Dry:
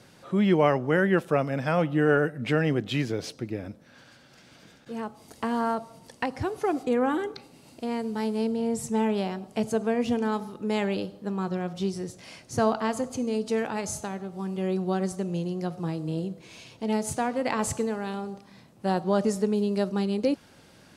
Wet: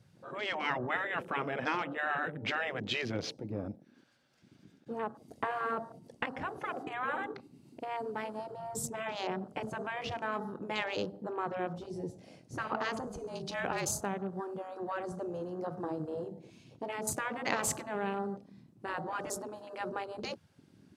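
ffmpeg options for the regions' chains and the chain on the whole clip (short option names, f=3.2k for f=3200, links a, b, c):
-filter_complex "[0:a]asettb=1/sr,asplit=3[a][b][c];[a]atrim=end=13.074[d];[b]atrim=start=13.07:end=13.89,asetpts=PTS-STARTPTS,afade=t=in:d=0.004:c=qsin,afade=t=out:st=0.816:d=0.004:c=qsin,highshelf=f=5.3k:g=5,afreqshift=-44[e];[c]atrim=start=13.886[f];[d][e]acrossfade=d=0.004:c1=hsin:c2=qsin[g];[g][f]acrossfade=d=0.004:c1=qsin:c2=hsin,afftfilt=real='re*lt(hypot(re,im),0.2)':imag='im*lt(hypot(re,im),0.2)':win_size=1024:overlap=0.75,lowshelf=f=110:g=-5,afwtdn=0.00631"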